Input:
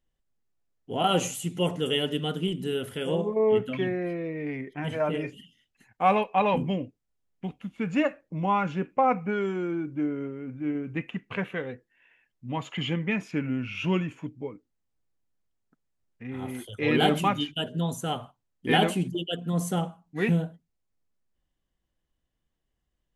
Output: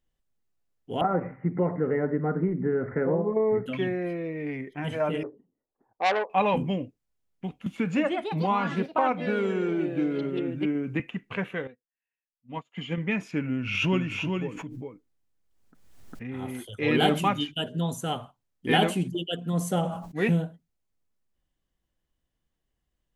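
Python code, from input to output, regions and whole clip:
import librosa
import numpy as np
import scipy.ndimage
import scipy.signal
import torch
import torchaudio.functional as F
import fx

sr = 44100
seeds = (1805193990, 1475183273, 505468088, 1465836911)

y = fx.chain(x, sr, fx.steep_lowpass(hz=2100.0, slope=96),
    fx.band_squash(depth_pct=100), at=(1.01, 3.66))
y = fx.chain(y, sr, fx.steep_lowpass(hz=1100.0, slope=36),
    fx.low_shelf_res(hz=260.0, db=-12.5, q=1.5),
    fx.transformer_sat(knee_hz=2000.0), at=(5.23, 6.3))
y = fx.chain(y, sr, fx.highpass(hz=42.0, slope=12),
    fx.echo_pitch(ms=188, semitones=3, count=3, db_per_echo=-6.0),
    fx.band_squash(depth_pct=70), at=(7.66, 11.0))
y = fx.chain(y, sr, fx.comb(ms=4.3, depth=0.34),
    fx.upward_expand(threshold_db=-47.0, expansion=2.5), at=(11.67, 12.98))
y = fx.chain(y, sr, fx.echo_single(ms=404, db=-4.5),
    fx.pre_swell(db_per_s=41.0), at=(13.52, 16.44))
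y = fx.chain(y, sr, fx.peak_eq(hz=580.0, db=7.0, octaves=0.43),
    fx.sustainer(db_per_s=65.0), at=(19.7, 20.31))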